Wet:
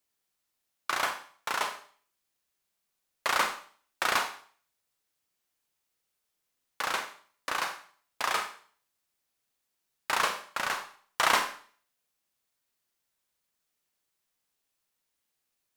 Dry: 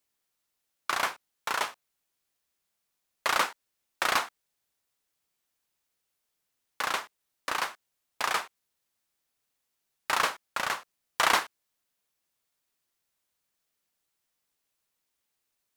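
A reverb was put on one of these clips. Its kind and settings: Schroeder reverb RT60 0.47 s, combs from 30 ms, DRR 6 dB; trim -1.5 dB

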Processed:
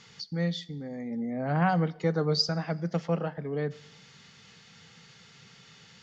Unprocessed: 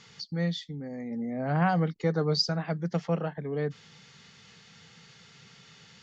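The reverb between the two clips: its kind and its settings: two-slope reverb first 0.85 s, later 2.4 s, DRR 18 dB

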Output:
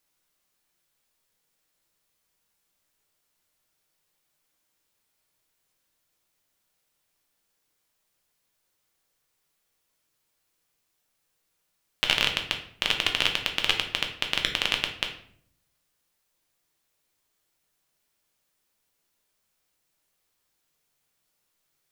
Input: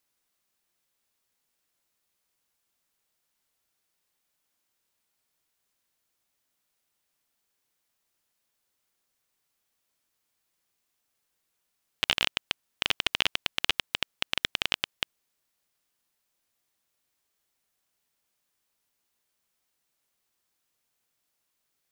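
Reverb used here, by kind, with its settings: simulated room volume 91 m³, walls mixed, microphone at 0.58 m; trim +1.5 dB

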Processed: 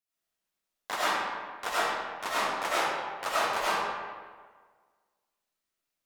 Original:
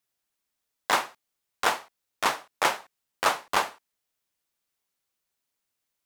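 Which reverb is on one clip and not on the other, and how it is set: algorithmic reverb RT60 1.6 s, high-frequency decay 0.65×, pre-delay 55 ms, DRR -10 dB; trim -11.5 dB

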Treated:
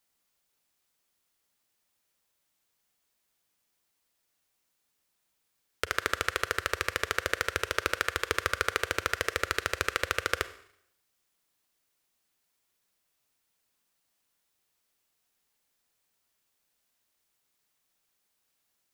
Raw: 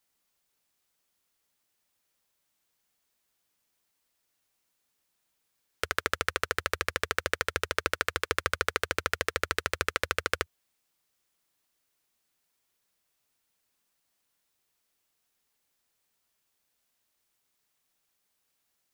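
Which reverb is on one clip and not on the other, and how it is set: Schroeder reverb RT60 0.71 s, combs from 32 ms, DRR 13.5 dB

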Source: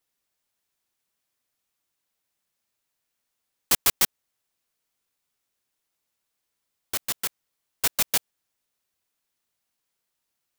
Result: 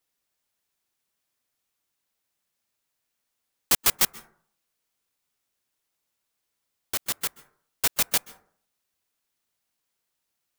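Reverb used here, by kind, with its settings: plate-style reverb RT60 0.53 s, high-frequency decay 0.35×, pre-delay 120 ms, DRR 19 dB

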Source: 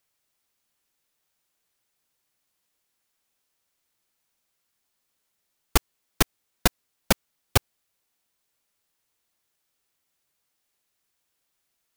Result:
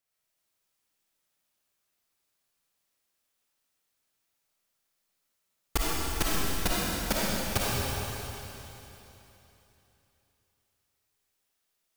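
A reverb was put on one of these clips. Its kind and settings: algorithmic reverb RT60 3.3 s, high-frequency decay 1×, pre-delay 15 ms, DRR -7 dB; trim -9.5 dB

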